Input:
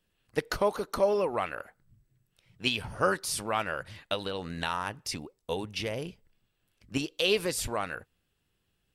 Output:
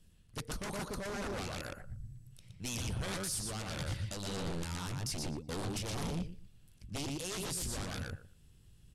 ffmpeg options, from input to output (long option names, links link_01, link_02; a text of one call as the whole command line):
ffmpeg -i in.wav -filter_complex "[0:a]areverse,acompressor=threshold=-39dB:ratio=4,areverse,lowshelf=frequency=250:gain=11.5,asplit=2[link_01][link_02];[link_02]adelay=118,lowpass=frequency=4600:poles=1,volume=-3dB,asplit=2[link_03][link_04];[link_04]adelay=118,lowpass=frequency=4600:poles=1,volume=0.16,asplit=2[link_05][link_06];[link_06]adelay=118,lowpass=frequency=4600:poles=1,volume=0.16[link_07];[link_03][link_05][link_07]amix=inputs=3:normalize=0[link_08];[link_01][link_08]amix=inputs=2:normalize=0,aeval=exprs='0.0168*(abs(mod(val(0)/0.0168+3,4)-2)-1)':channel_layout=same,lowpass=frequency=12000:width=0.5412,lowpass=frequency=12000:width=1.3066,bass=frequency=250:gain=7,treble=frequency=4000:gain=12,alimiter=level_in=4.5dB:limit=-24dB:level=0:latency=1:release=269,volume=-4.5dB" out.wav